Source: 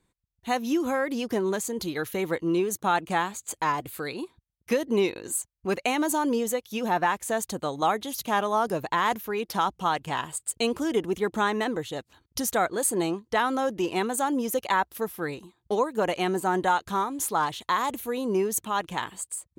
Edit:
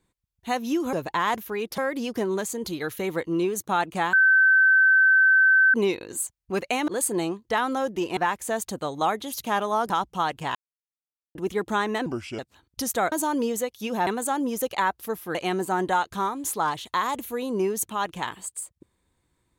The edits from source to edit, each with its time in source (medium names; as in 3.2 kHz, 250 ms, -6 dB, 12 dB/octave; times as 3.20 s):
3.28–4.89 s: bleep 1.54 kHz -14 dBFS
6.03–6.98 s: swap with 12.70–13.99 s
8.71–9.56 s: move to 0.93 s
10.21–11.01 s: mute
11.72–11.97 s: speed 76%
15.27–16.10 s: delete